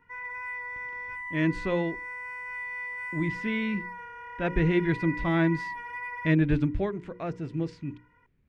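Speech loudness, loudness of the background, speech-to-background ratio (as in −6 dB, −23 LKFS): −28.5 LKFS, −36.0 LKFS, 7.5 dB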